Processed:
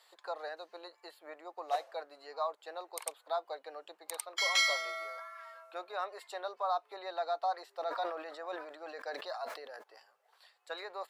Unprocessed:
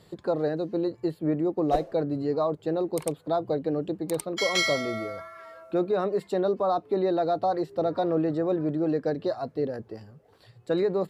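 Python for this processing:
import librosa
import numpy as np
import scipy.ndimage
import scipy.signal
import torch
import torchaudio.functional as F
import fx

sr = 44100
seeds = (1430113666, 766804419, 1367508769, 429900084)

y = scipy.signal.sosfilt(scipy.signal.butter(4, 780.0, 'highpass', fs=sr, output='sos'), x)
y = fx.sustainer(y, sr, db_per_s=64.0, at=(7.78, 9.82), fade=0.02)
y = y * librosa.db_to_amplitude(-2.5)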